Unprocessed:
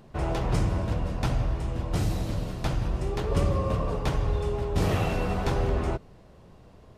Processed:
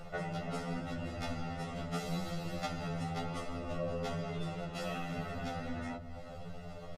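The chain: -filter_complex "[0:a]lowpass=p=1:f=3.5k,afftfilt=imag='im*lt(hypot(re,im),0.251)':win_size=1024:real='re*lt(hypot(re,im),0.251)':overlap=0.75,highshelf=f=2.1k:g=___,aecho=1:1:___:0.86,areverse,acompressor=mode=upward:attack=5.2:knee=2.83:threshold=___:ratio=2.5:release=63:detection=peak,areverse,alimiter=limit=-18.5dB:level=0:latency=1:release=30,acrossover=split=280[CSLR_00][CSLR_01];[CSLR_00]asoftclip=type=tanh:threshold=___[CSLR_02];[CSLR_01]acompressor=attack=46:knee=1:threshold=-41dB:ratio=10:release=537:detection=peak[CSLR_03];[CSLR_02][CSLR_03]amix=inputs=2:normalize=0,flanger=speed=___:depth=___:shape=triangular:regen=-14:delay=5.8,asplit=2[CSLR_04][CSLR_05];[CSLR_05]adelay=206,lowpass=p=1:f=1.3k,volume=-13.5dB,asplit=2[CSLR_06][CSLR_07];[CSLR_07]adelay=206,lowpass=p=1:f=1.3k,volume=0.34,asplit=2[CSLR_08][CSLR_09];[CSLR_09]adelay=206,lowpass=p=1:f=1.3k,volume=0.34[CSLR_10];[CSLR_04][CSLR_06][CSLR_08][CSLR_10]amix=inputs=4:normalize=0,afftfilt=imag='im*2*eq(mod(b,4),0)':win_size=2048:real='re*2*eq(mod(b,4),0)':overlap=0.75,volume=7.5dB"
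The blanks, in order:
5.5, 1.5, -41dB, -39dB, 0.42, 2.8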